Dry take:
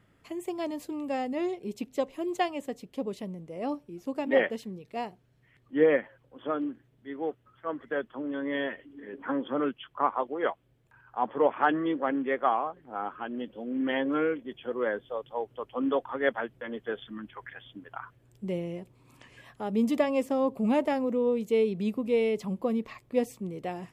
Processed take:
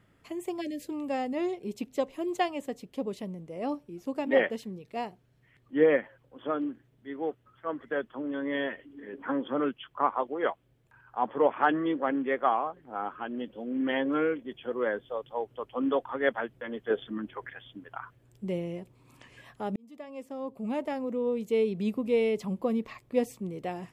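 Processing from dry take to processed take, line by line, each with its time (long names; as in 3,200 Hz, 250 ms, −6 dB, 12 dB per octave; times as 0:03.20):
0:00.61–0:00.87: time-frequency box erased 610–1,600 Hz
0:16.90–0:17.50: parametric band 410 Hz +8.5 dB 1.9 octaves
0:19.76–0:21.89: fade in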